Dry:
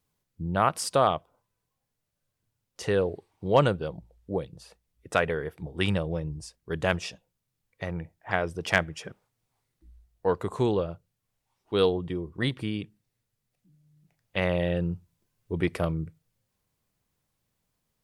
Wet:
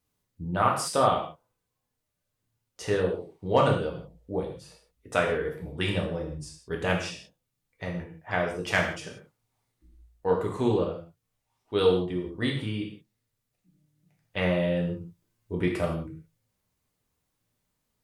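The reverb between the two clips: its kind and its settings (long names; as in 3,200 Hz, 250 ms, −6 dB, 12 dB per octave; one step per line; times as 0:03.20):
reverb whose tail is shaped and stops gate 200 ms falling, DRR −1.5 dB
level −3.5 dB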